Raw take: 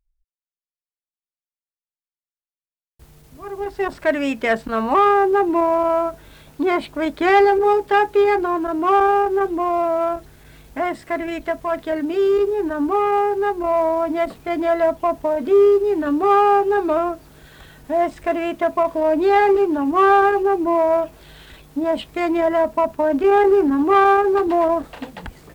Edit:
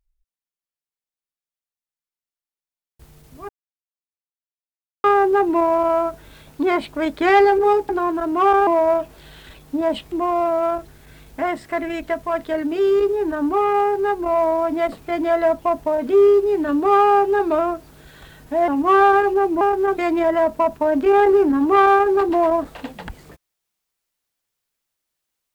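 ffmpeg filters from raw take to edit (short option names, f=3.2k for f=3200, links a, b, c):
-filter_complex "[0:a]asplit=9[a][b][c][d][e][f][g][h][i];[a]atrim=end=3.49,asetpts=PTS-STARTPTS,afade=t=out:st=3.486:d=0.004:c=hsin[j];[b]atrim=start=3.49:end=5.04,asetpts=PTS-STARTPTS,volume=0[k];[c]atrim=start=5.04:end=7.892,asetpts=PTS-STARTPTS,afade=t=in:d=0.004:c=hsin[l];[d]atrim=start=8.358:end=9.142[m];[e]atrim=start=20.698:end=22.152[n];[f]atrim=start=9.498:end=18.062[o];[g]atrim=start=19.768:end=20.702[p];[h]atrim=start=9.138:end=9.502[q];[i]atrim=start=22.148[r];[j][k][l]concat=n=3:v=0:a=1[s];[s][m]acrossfade=d=0.004:c1=hsin:c2=hsin[t];[t][n]acrossfade=d=0.004:c1=hsin:c2=hsin[u];[u][o]acrossfade=d=0.004:c1=hsin:c2=hsin[v];[v][p]acrossfade=d=0.004:c1=hsin:c2=hsin[w];[w][q]acrossfade=d=0.004:c1=hsin:c2=hsin[x];[x][r]acrossfade=d=0.004:c1=hsin:c2=hsin"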